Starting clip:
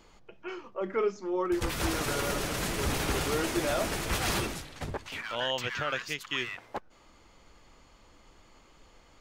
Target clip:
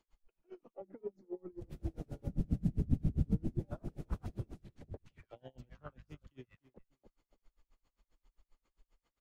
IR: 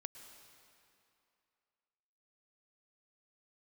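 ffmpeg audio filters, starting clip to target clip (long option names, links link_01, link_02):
-filter_complex "[0:a]asettb=1/sr,asplit=3[link_01][link_02][link_03];[link_01]atrim=end=2.274[link_04];[link_02]atrim=start=2.27:end=3.59,asetpts=PTS-STARTPTS,afade=type=in:duration=0.004:curve=qsin,afade=type=out:start_time=1.316:duration=0.004:curve=qsin,lowshelf=frequency=300:width_type=q:width=1.5:gain=10.5[link_05];[link_03]atrim=start=3.586[link_06];[link_04][link_05]acrossfade=duration=0.004:curve1=hsin:curve2=qsin[link_07];[link_07][link_06]acrossfade=duration=0.004:curve1=qsin:curve2=hsin,asettb=1/sr,asplit=3[link_08][link_09][link_10];[link_08]atrim=end=5.544[link_11];[link_09]atrim=start=5.54:end=6.27,asetpts=PTS-STARTPTS,afade=type=in:duration=0.004:curve=qsin,afade=type=out:start_time=0.726:duration=0.004:curve=qsin,aeval=exprs='val(0)+0.00447*(sin(2*PI*50*n/s)+sin(2*PI*2*50*n/s)/2+sin(2*PI*3*50*n/s)/3+sin(2*PI*4*50*n/s)/4+sin(2*PI*5*50*n/s)/5)':channel_layout=same[link_12];[link_10]atrim=start=6.266[link_13];[link_11][link_12]acrossfade=duration=0.004:curve1=hsin:curve2=qsin[link_14];[link_14][link_13]acrossfade=duration=0.004:curve1=qsin:curve2=hsin,acrossover=split=260[link_15][link_16];[link_16]acompressor=threshold=-41dB:ratio=5[link_17];[link_15][link_17]amix=inputs=2:normalize=0,afwtdn=0.0126,asplit=2[link_18][link_19];[link_19]adelay=291,lowpass=frequency=2200:poles=1,volume=-15dB,asplit=2[link_20][link_21];[link_21]adelay=291,lowpass=frequency=2200:poles=1,volume=0.24,asplit=2[link_22][link_23];[link_23]adelay=291,lowpass=frequency=2200:poles=1,volume=0.24[link_24];[link_18][link_20][link_22][link_24]amix=inputs=4:normalize=0,aeval=exprs='val(0)*pow(10,-32*(0.5-0.5*cos(2*PI*7.5*n/s))/20)':channel_layout=same,volume=-1.5dB"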